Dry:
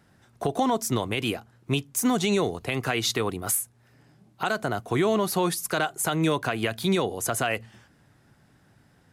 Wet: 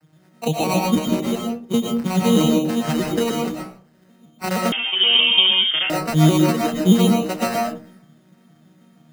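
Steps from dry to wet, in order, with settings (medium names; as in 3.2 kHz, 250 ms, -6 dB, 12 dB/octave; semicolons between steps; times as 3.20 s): vocoder on a broken chord minor triad, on D#3, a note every 157 ms; sample-and-hold 13×; algorithmic reverb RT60 0.42 s, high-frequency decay 0.4×, pre-delay 80 ms, DRR -0.5 dB; 4.72–5.90 s: frequency inversion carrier 3.4 kHz; trim +6.5 dB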